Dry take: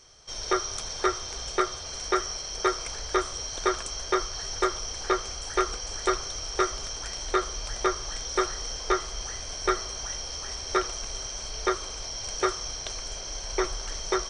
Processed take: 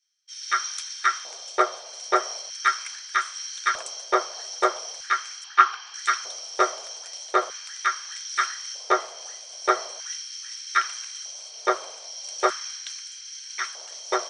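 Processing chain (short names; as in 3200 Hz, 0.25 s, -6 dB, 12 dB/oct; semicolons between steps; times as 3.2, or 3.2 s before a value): LFO high-pass square 0.4 Hz 600–1600 Hz; 5.44–5.94 speaker cabinet 370–5200 Hz, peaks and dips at 370 Hz +8 dB, 570 Hz -7 dB, 800 Hz +8 dB, 1100 Hz +8 dB, 2000 Hz -5 dB, 2900 Hz +4 dB; three-band expander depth 100%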